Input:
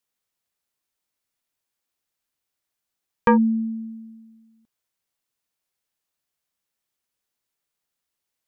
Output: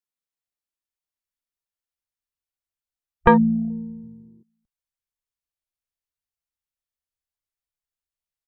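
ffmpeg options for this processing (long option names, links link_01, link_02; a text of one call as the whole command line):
ffmpeg -i in.wav -filter_complex "[0:a]afwtdn=0.0141,asplit=2[link_01][link_02];[link_02]asetrate=33038,aresample=44100,atempo=1.33484,volume=-12dB[link_03];[link_01][link_03]amix=inputs=2:normalize=0,asubboost=boost=7.5:cutoff=82,volume=4dB" out.wav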